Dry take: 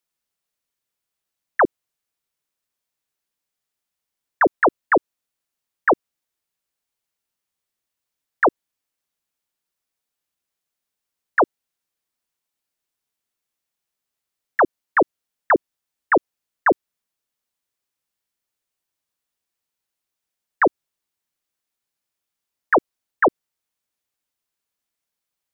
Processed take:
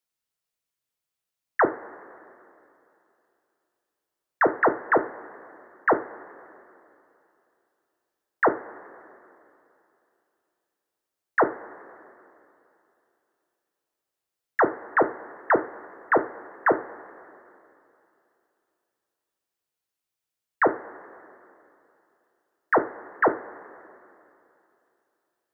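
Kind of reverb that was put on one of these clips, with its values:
coupled-rooms reverb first 0.33 s, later 2.9 s, from −18 dB, DRR 6 dB
level −4.5 dB

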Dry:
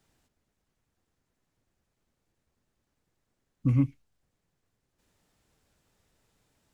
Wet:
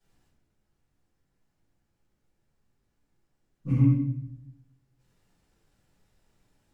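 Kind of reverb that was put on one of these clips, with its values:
rectangular room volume 190 cubic metres, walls mixed, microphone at 4.7 metres
level −14 dB

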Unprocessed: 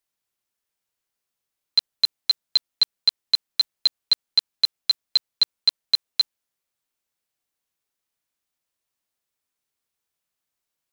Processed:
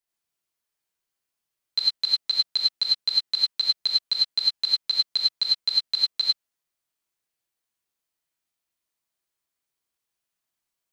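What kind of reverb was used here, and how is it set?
reverb whose tail is shaped and stops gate 120 ms rising, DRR −3 dB
level −6 dB

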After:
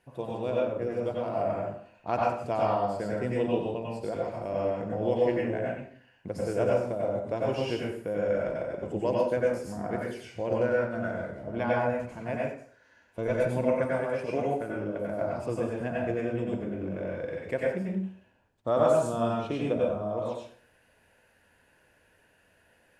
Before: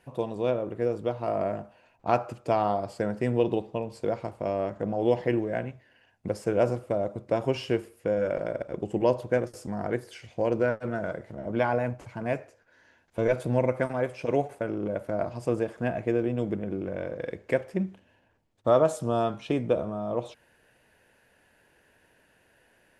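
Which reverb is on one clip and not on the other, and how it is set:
dense smooth reverb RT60 0.51 s, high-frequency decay 0.85×, pre-delay 80 ms, DRR −4 dB
level −6 dB

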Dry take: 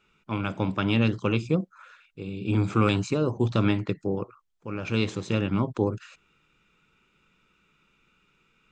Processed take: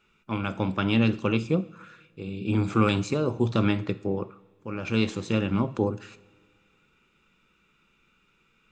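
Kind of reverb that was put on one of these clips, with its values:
coupled-rooms reverb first 0.47 s, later 2.1 s, from −17 dB, DRR 13 dB

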